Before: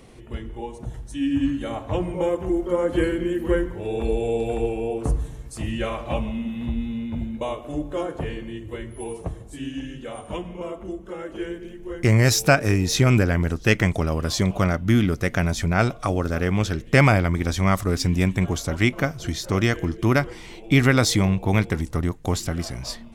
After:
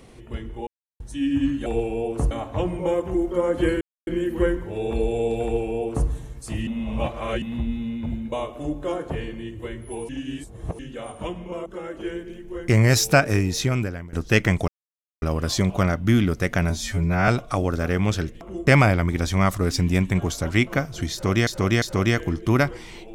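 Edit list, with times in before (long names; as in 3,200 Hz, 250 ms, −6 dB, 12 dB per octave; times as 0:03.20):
0:00.67–0:01.00: silence
0:03.16: splice in silence 0.26 s
0:04.52–0:05.17: duplicate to 0:01.66
0:05.76–0:06.51: reverse
0:09.18–0:09.88: reverse
0:10.75–0:11.01: move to 0:16.93
0:12.65–0:13.48: fade out linear, to −23.5 dB
0:14.03: splice in silence 0.54 s
0:15.51–0:15.80: time-stretch 2×
0:19.38–0:19.73: repeat, 3 plays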